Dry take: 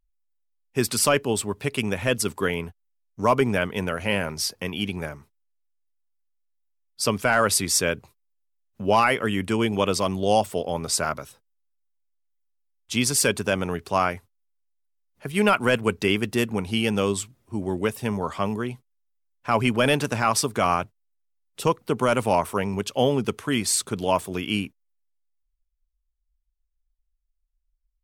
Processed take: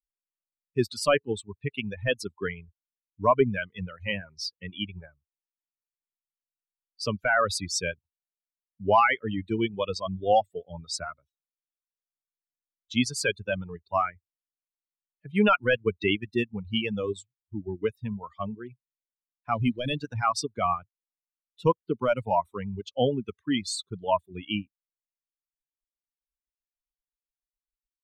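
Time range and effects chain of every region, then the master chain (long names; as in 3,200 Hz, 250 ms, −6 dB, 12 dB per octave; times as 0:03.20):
0:19.54–0:20.01: parametric band 1,300 Hz −8 dB 2.2 octaves + notch filter 410 Hz, Q 11 + centre clipping without the shift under −33.5 dBFS
whole clip: spectral dynamics exaggerated over time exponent 2; low-pass filter 4,800 Hz 12 dB per octave; reverb reduction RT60 1.4 s; level +2.5 dB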